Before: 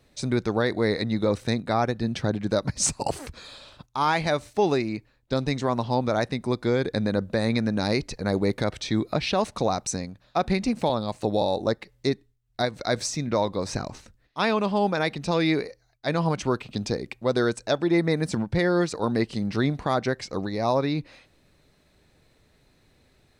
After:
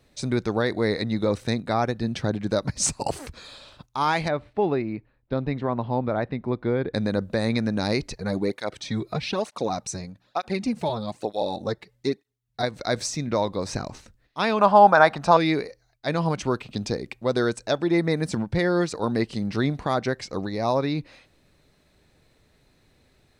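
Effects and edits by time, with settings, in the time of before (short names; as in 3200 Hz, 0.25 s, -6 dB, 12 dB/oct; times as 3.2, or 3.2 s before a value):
4.28–6.94 air absorption 430 m
8.15–12.63 tape flanging out of phase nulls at 1.1 Hz, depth 4.2 ms
14.59–15.37 band shelf 990 Hz +13.5 dB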